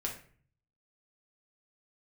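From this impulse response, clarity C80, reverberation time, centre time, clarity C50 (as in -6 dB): 12.5 dB, 0.45 s, 22 ms, 7.5 dB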